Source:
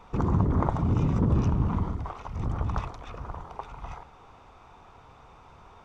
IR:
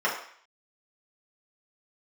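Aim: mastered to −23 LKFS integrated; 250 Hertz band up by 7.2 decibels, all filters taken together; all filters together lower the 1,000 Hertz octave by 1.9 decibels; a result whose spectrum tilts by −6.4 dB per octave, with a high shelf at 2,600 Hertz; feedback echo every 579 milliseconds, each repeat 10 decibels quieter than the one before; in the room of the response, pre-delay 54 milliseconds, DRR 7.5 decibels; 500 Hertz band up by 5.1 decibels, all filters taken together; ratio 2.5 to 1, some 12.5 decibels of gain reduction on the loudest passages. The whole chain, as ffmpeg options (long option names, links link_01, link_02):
-filter_complex "[0:a]equalizer=frequency=250:width_type=o:gain=9,equalizer=frequency=500:width_type=o:gain=4,equalizer=frequency=1000:width_type=o:gain=-4.5,highshelf=frequency=2600:gain=4,acompressor=threshold=-35dB:ratio=2.5,aecho=1:1:579|1158|1737|2316:0.316|0.101|0.0324|0.0104,asplit=2[link_01][link_02];[1:a]atrim=start_sample=2205,adelay=54[link_03];[link_02][link_03]afir=irnorm=-1:irlink=0,volume=-21dB[link_04];[link_01][link_04]amix=inputs=2:normalize=0,volume=12.5dB"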